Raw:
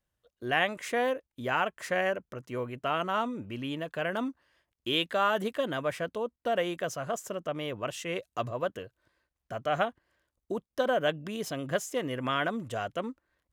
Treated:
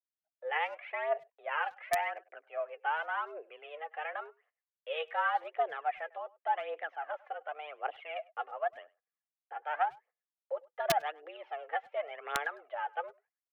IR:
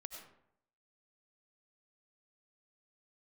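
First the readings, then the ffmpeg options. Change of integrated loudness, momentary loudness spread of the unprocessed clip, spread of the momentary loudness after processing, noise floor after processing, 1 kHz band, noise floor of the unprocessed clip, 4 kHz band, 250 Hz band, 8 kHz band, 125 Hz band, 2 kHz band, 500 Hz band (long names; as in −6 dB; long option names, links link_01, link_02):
−4.5 dB, 9 LU, 12 LU, below −85 dBFS, −1.0 dB, below −85 dBFS, −10.5 dB, below −20 dB, can't be measured, below −20 dB, −3.5 dB, −7.0 dB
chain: -filter_complex "[0:a]agate=range=-22dB:threshold=-56dB:ratio=16:detection=peak,aphaser=in_gain=1:out_gain=1:delay=3.3:decay=0.64:speed=0.89:type=triangular,highpass=frequency=340:width_type=q:width=0.5412,highpass=frequency=340:width_type=q:width=1.307,lowpass=frequency=2500:width_type=q:width=0.5176,lowpass=frequency=2500:width_type=q:width=0.7071,lowpass=frequency=2500:width_type=q:width=1.932,afreqshift=150,aeval=exprs='(mod(4.22*val(0)+1,2)-1)/4.22':channel_layout=same,asplit=2[link_01][link_02];[link_02]adelay=100,highpass=300,lowpass=3400,asoftclip=type=hard:threshold=-21.5dB,volume=-23dB[link_03];[link_01][link_03]amix=inputs=2:normalize=0,volume=-6.5dB"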